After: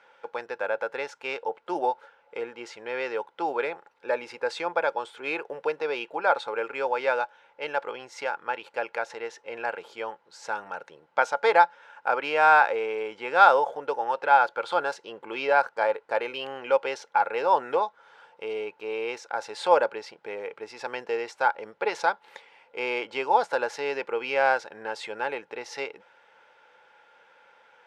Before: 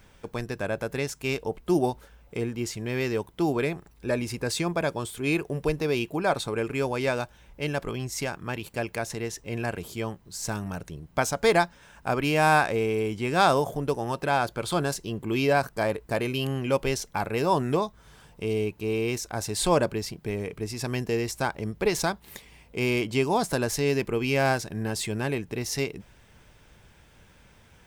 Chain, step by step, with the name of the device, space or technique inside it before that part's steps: tin-can telephone (BPF 690–3200 Hz; small resonant body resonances 510/850/1400 Hz, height 13 dB, ringing for 40 ms)

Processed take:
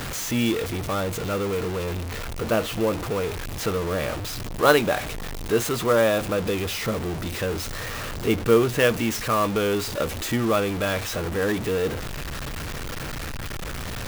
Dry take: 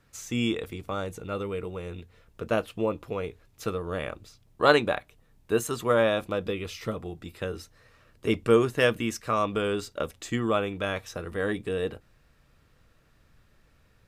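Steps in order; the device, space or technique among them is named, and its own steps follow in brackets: early CD player with a faulty converter (zero-crossing step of -27 dBFS; clock jitter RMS 0.021 ms); gain +1.5 dB

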